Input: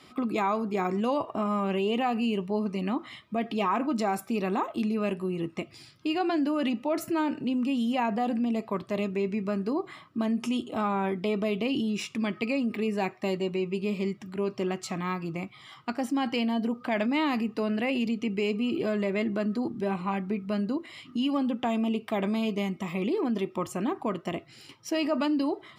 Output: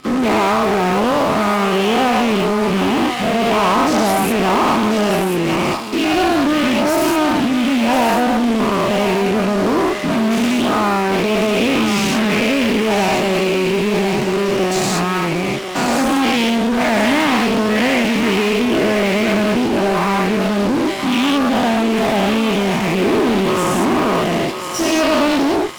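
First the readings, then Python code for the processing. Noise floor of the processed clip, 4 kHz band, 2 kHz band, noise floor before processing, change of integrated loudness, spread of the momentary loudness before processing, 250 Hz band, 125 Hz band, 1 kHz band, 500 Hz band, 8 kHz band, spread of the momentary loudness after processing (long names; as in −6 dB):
−19 dBFS, +17.5 dB, +17.5 dB, −53 dBFS, +13.5 dB, 6 LU, +12.0 dB, +13.0 dB, +15.0 dB, +14.0 dB, +21.5 dB, 3 LU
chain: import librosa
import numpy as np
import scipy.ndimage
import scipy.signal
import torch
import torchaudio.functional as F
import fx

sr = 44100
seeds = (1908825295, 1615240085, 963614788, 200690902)

p1 = fx.spec_dilate(x, sr, span_ms=240)
p2 = fx.fuzz(p1, sr, gain_db=36.0, gate_db=-40.0)
p3 = p1 + (p2 * librosa.db_to_amplitude(-6.0))
p4 = fx.echo_thinned(p3, sr, ms=1043, feedback_pct=30, hz=520.0, wet_db=-6.0)
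y = fx.doppler_dist(p4, sr, depth_ms=0.17)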